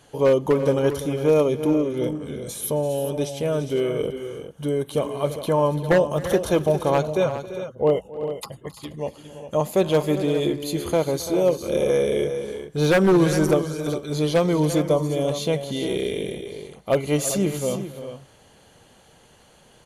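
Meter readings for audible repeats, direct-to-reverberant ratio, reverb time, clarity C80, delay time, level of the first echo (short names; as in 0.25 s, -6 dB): 3, none, none, none, 0.268 s, -19.5 dB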